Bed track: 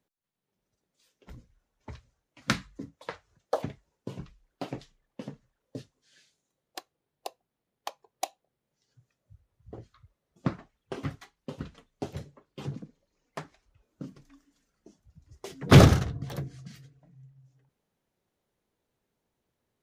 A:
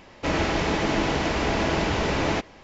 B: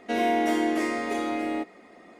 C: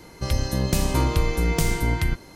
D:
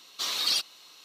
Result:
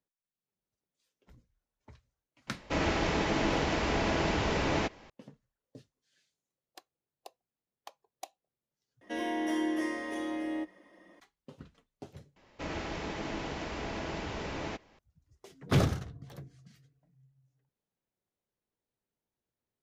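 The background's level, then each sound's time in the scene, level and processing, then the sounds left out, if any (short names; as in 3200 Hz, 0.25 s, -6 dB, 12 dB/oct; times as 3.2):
bed track -11.5 dB
2.47 add A -5.5 dB
9.01 replace with B -9.5 dB + ripple EQ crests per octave 1.2, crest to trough 11 dB
12.36 replace with A -13.5 dB
not used: C, D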